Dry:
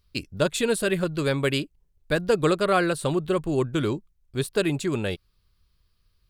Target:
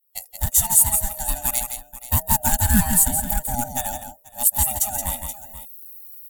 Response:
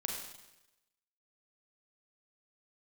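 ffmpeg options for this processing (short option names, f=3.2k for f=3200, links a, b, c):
-af "afftfilt=real='real(if(lt(b,1008),b+24*(1-2*mod(floor(b/24),2)),b),0)':imag='imag(if(lt(b,1008),b+24*(1-2*mod(floor(b/24),2)),b),0)':win_size=2048:overlap=0.75,aeval=exprs='clip(val(0),-1,0.119)':c=same,firequalizer=gain_entry='entry(180,0);entry(270,6);entry(400,-23);entry(1000,-11);entry(2600,-13);entry(4900,-5);entry(8300,14)':delay=0.05:min_phase=1,aexciter=amount=4.7:drive=7.7:freq=12k,aecho=1:1:164|481:0.422|0.133,asetrate=40440,aresample=44100,atempo=1.09051,dynaudnorm=f=180:g=5:m=12.5dB,agate=range=-33dB:threshold=-43dB:ratio=3:detection=peak,volume=-1dB"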